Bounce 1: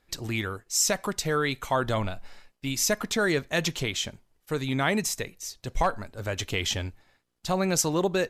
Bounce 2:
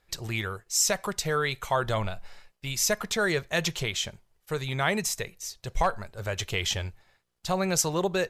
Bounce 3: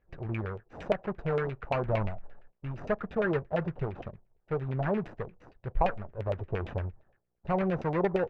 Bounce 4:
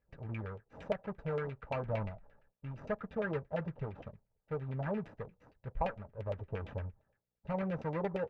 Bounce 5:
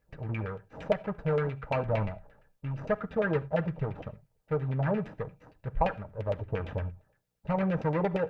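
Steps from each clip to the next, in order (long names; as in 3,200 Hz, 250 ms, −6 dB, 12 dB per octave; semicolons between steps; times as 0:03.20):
parametric band 270 Hz −14 dB 0.38 octaves
running median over 41 samples; auto-filter low-pass saw down 8.7 Hz 590–2,700 Hz
notch comb filter 360 Hz; level −6 dB
convolution reverb, pre-delay 6 ms, DRR 13.5 dB; level +7 dB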